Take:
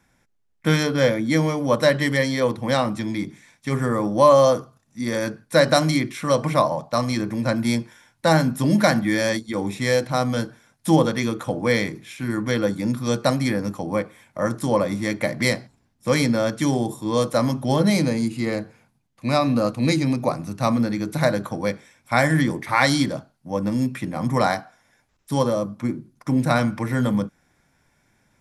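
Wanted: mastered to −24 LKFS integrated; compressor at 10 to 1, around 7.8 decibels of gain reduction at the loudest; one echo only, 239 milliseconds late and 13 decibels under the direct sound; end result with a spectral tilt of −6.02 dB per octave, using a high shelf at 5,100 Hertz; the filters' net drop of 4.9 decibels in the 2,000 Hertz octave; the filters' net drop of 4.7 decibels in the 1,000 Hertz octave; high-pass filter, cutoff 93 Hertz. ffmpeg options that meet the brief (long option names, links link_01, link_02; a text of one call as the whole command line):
ffmpeg -i in.wav -af "highpass=93,equalizer=frequency=1000:width_type=o:gain=-5,equalizer=frequency=2000:width_type=o:gain=-3.5,highshelf=frequency=5100:gain=-6,acompressor=threshold=-20dB:ratio=10,aecho=1:1:239:0.224,volume=2.5dB" out.wav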